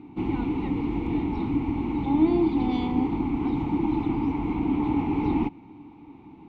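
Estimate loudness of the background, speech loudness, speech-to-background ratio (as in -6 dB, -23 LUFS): -27.0 LUFS, -25.5 LUFS, 1.5 dB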